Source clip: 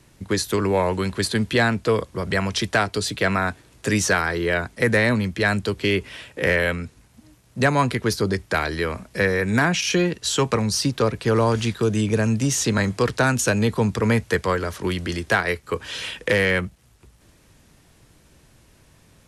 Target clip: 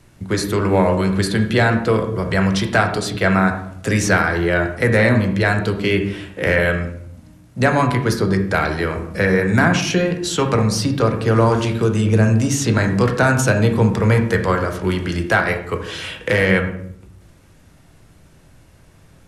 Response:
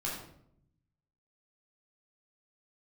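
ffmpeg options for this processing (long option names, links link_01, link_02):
-filter_complex "[0:a]asplit=2[link_01][link_02];[1:a]atrim=start_sample=2205,lowpass=2800[link_03];[link_02][link_03]afir=irnorm=-1:irlink=0,volume=-4dB[link_04];[link_01][link_04]amix=inputs=2:normalize=0"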